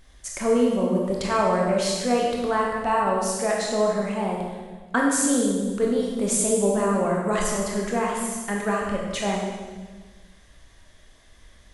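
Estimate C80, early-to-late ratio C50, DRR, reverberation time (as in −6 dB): 3.0 dB, 0.5 dB, −2.0 dB, 1.4 s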